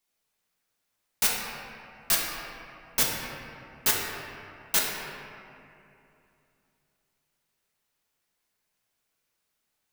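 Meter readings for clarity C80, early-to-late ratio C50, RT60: 1.5 dB, 0.0 dB, 2.7 s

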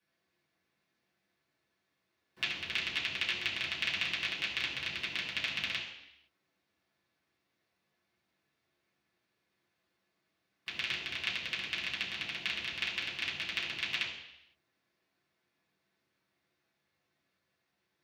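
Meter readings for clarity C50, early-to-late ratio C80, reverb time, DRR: 5.0 dB, 7.5 dB, 0.80 s, -7.5 dB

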